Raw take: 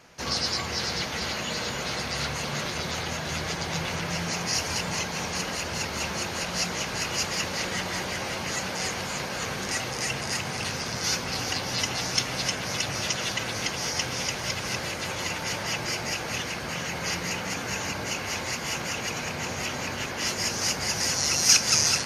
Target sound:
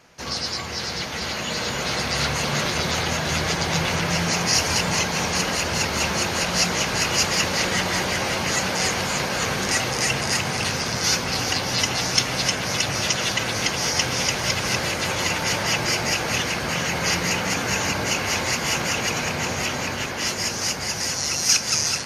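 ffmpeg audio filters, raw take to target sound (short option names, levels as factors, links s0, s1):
-af "dynaudnorm=f=250:g=13:m=2.37"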